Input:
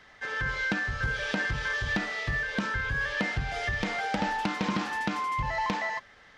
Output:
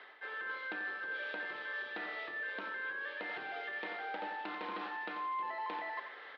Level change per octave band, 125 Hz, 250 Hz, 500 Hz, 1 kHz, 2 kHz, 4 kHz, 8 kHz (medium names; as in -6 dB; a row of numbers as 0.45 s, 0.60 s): under -30 dB, -18.0 dB, -9.0 dB, -8.0 dB, -9.5 dB, -12.5 dB, under -30 dB